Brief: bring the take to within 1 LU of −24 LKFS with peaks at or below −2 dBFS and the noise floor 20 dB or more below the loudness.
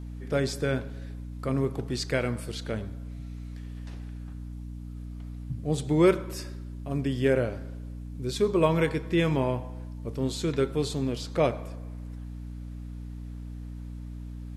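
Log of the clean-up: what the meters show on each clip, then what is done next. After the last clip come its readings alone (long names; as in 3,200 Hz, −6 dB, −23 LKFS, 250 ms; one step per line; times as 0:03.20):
mains hum 60 Hz; hum harmonics up to 300 Hz; level of the hum −36 dBFS; integrated loudness −28.5 LKFS; sample peak −10.0 dBFS; target loudness −24.0 LKFS
→ mains-hum notches 60/120/180/240/300 Hz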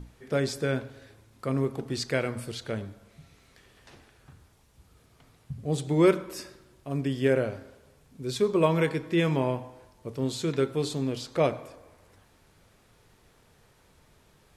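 mains hum none found; integrated loudness −28.5 LKFS; sample peak −10.0 dBFS; target loudness −24.0 LKFS
→ level +4.5 dB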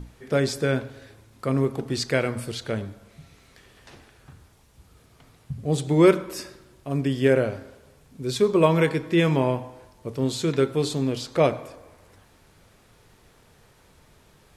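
integrated loudness −24.0 LKFS; sample peak −5.5 dBFS; background noise floor −57 dBFS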